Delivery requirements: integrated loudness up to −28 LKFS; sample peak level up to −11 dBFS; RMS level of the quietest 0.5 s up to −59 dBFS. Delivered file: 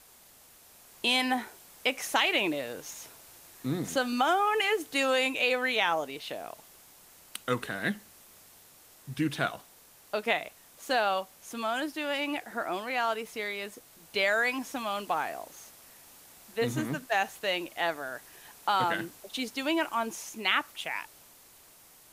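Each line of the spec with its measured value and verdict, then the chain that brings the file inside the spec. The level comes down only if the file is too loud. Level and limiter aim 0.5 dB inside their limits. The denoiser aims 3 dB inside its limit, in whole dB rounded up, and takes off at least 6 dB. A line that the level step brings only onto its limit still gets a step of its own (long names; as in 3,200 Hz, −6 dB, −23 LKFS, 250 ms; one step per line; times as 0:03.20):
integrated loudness −30.0 LKFS: in spec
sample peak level −12.0 dBFS: in spec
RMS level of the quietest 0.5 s −57 dBFS: out of spec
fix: broadband denoise 6 dB, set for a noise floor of −57 dBFS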